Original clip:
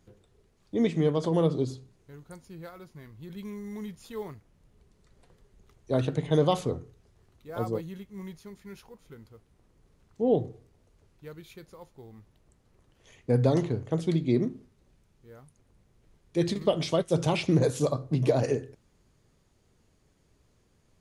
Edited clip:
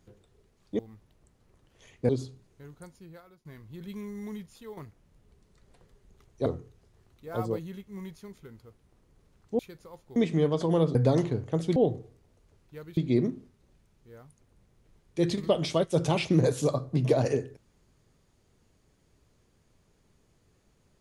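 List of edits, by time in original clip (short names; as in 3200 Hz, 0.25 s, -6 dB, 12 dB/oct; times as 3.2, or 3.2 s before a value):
0.79–1.58 swap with 12.04–13.34
2.21–2.94 fade out, to -17 dB
3.75–4.26 fade out, to -9 dB
5.95–6.68 cut
8.6–9.05 cut
10.26–11.47 move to 14.15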